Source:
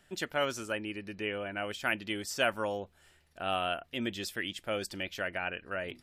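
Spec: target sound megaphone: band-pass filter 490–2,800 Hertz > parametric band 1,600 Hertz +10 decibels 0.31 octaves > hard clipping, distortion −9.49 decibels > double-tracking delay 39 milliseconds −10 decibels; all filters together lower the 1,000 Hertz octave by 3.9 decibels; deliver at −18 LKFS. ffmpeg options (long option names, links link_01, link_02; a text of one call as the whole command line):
ffmpeg -i in.wav -filter_complex "[0:a]highpass=490,lowpass=2800,equalizer=frequency=1000:width_type=o:gain=-8.5,equalizer=frequency=1600:width_type=o:width=0.31:gain=10,asoftclip=type=hard:threshold=-29dB,asplit=2[link_01][link_02];[link_02]adelay=39,volume=-10dB[link_03];[link_01][link_03]amix=inputs=2:normalize=0,volume=19.5dB" out.wav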